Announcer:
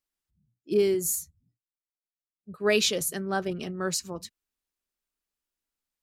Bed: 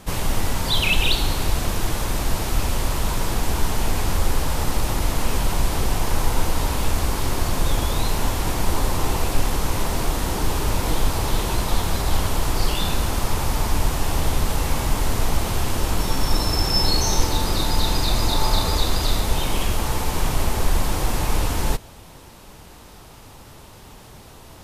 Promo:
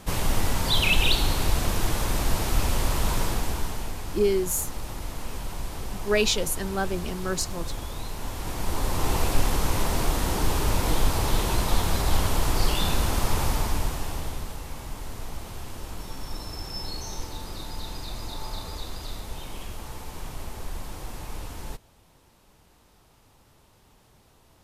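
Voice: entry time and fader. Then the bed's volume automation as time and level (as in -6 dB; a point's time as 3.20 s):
3.45 s, +0.5 dB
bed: 3.20 s -2 dB
3.98 s -12.5 dB
8.15 s -12.5 dB
9.16 s -2 dB
13.45 s -2 dB
14.62 s -15 dB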